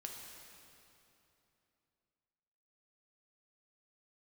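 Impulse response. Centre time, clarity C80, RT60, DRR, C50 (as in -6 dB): 102 ms, 3.5 dB, 3.0 s, 0.0 dB, 2.0 dB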